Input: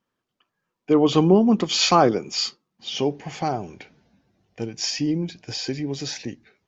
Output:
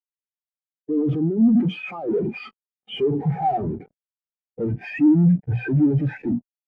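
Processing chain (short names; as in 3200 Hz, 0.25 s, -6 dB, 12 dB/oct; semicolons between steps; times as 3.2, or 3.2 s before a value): in parallel at -11 dB: soft clip -19.5 dBFS, distortion -7 dB; on the sum: notches 60/120/180/240 Hz; negative-ratio compressor -23 dBFS, ratio -0.5; low-pass opened by the level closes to 430 Hz, open at -17 dBFS; LPF 2400 Hz 24 dB/oct; fuzz box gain 48 dB, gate -45 dBFS; notch 1100 Hz, Q 15; spectral expander 2.5:1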